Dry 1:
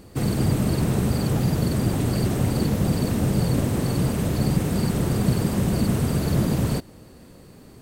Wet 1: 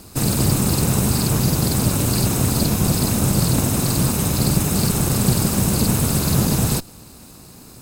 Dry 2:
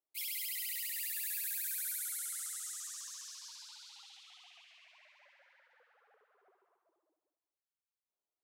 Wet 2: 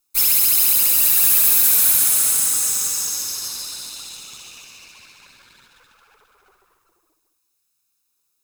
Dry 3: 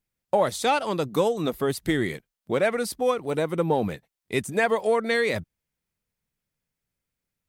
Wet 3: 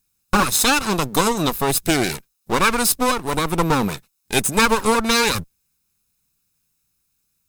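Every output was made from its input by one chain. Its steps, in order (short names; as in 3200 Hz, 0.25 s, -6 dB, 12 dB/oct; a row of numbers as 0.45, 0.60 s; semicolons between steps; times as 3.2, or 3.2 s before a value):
minimum comb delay 0.78 ms; tone controls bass -1 dB, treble +11 dB; normalise peaks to -3 dBFS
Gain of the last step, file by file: +4.5, +15.5, +8.0 dB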